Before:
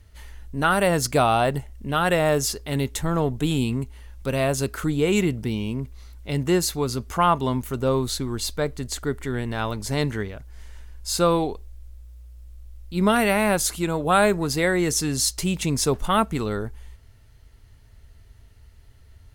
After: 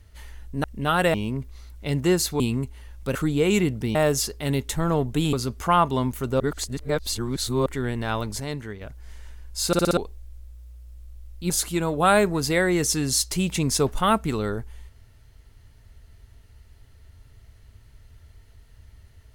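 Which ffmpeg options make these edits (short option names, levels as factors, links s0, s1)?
-filter_complex "[0:a]asplit=17[s0][s1][s2][s3][s4][s5][s6][s7][s8][s9][s10][s11][s12][s13][s14][s15][s16];[s0]atrim=end=0.642[s17];[s1]atrim=start=1.708:end=2.212[s18];[s2]atrim=start=5.568:end=6.832[s19];[s3]atrim=start=3.588:end=4.342[s20];[s4]atrim=start=4.768:end=5.572[s21];[s5]atrim=start=2.208:end=3.592[s22];[s6]atrim=start=6.828:end=7.902[s23];[s7]atrim=start=7.898:end=9.162,asetpts=PTS-STARTPTS,areverse[s24];[s8]atrim=start=9.158:end=9.902[s25];[s9]atrim=start=9.898:end=10.312,asetpts=PTS-STARTPTS,volume=0.422[s26];[s10]atrim=start=10.308:end=11.232[s27];[s11]atrim=start=11.168:end=11.232[s28];[s12]atrim=start=11.168:end=11.232[s29];[s13]atrim=start=11.168:end=11.232[s30];[s14]atrim=start=11.168:end=11.232[s31];[s15]atrim=start=11.468:end=13.002[s32];[s16]atrim=start=13.568[s33];[s17][s18]acrossfade=d=0.004:c1=hsin:c2=hsin[s34];[s34][s19]acrossfade=d=0.004:c1=hsin:c2=hsin[s35];[s35][s20]acrossfade=d=0.004:c1=hsin:c2=hsin[s36];[s36][s21]acrossfade=d=0.004:c1=hsin:c2=hsin[s37];[s37][s22]acrossfade=d=0.004:c1=hsin:c2=hsin[s38];[s38][s23]acrossfade=d=0.004:c1=hsin:c2=hsin[s39];[s39][s24]acrossfade=d=0.004:c1=hsin:c2=hsin[s40];[s40][s25]acrossfade=d=0.004:c1=hsin:c2=hsin[s41];[s41][s26]acrossfade=d=0.004:c1=hsin:c2=hsin[s42];[s42][s27]acrossfade=d=0.004:c1=hsin:c2=hsin[s43];[s43][s28]acrossfade=d=0.004:c1=hsin:c2=hsin[s44];[s44][s29]acrossfade=d=0.004:c1=hsin:c2=hsin[s45];[s45][s30]acrossfade=d=0.004:c1=hsin:c2=hsin[s46];[s46][s31]acrossfade=d=0.004:c1=hsin:c2=hsin[s47];[s47][s32]acrossfade=d=0.004:c1=hsin:c2=hsin[s48];[s48][s33]acrossfade=d=0.004:c1=hsin:c2=hsin"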